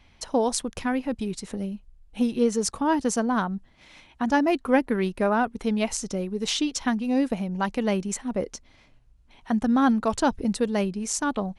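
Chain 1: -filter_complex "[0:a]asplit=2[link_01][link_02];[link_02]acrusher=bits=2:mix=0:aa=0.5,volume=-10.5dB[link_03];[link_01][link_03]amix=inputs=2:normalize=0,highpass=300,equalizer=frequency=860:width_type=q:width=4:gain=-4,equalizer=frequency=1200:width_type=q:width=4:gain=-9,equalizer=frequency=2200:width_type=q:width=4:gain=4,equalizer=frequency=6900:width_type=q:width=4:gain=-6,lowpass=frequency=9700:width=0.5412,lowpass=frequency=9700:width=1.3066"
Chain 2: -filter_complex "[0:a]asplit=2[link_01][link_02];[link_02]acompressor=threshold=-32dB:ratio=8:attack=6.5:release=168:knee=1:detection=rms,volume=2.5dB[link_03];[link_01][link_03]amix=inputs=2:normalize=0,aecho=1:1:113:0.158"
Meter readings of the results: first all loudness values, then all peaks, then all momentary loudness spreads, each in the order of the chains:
−27.5, −23.0 LKFS; −6.5, −4.0 dBFS; 12, 8 LU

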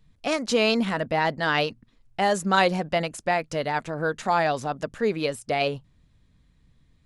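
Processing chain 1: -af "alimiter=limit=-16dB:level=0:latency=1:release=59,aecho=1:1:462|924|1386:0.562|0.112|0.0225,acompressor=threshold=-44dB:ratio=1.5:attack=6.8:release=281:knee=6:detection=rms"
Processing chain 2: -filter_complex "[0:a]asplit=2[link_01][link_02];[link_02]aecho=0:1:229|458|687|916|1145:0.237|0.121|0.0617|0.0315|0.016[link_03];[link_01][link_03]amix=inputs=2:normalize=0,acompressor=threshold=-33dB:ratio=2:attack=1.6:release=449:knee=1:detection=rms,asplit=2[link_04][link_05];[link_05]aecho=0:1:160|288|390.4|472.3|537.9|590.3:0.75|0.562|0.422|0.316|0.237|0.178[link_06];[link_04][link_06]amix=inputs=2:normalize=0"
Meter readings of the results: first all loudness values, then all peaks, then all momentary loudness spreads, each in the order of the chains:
−35.0, −30.5 LKFS; −22.0, −16.0 dBFS; 5, 8 LU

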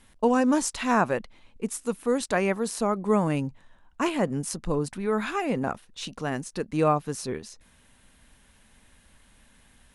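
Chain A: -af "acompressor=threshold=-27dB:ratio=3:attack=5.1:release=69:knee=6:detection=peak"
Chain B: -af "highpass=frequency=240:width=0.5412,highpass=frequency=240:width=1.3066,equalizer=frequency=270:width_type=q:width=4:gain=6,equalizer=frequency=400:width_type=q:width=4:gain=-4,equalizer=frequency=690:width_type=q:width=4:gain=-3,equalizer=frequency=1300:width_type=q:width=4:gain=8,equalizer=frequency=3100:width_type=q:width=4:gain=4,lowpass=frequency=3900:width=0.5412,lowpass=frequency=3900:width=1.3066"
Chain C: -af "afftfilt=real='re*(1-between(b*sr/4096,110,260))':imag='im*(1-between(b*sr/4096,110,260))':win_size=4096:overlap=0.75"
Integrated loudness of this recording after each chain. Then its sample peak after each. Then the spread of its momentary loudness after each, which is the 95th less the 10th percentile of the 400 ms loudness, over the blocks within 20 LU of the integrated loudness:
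−31.5, −26.5, −28.5 LKFS; −13.5, −8.0, −10.0 dBFS; 8, 12, 11 LU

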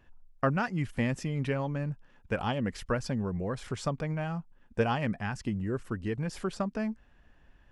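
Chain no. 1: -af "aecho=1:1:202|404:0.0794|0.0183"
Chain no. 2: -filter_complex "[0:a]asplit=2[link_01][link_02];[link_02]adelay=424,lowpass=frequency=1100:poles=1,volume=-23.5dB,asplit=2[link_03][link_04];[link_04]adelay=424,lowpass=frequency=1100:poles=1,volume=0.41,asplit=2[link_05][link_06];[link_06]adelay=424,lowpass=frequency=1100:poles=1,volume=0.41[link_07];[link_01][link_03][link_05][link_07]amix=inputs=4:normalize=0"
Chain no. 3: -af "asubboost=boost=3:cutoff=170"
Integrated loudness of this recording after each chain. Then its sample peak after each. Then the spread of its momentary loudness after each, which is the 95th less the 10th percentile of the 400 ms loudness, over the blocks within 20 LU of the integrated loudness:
−32.5, −33.0, −31.0 LKFS; −14.0, −14.0, −13.5 dBFS; 7, 7, 6 LU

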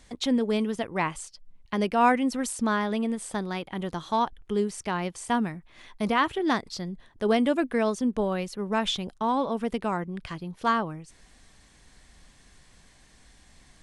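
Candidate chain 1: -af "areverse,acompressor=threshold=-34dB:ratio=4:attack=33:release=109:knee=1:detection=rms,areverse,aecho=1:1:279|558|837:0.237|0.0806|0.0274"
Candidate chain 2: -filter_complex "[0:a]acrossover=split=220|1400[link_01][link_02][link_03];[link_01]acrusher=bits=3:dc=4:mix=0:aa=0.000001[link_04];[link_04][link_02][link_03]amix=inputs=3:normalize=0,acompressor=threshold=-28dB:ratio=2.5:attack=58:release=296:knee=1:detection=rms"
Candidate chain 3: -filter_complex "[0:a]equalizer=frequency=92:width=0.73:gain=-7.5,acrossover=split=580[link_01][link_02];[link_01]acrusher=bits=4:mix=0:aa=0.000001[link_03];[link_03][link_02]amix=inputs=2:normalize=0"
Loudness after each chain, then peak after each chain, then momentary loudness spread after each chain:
−35.0, −31.5, −28.0 LKFS; −21.0, −14.0, −8.5 dBFS; 7, 8, 11 LU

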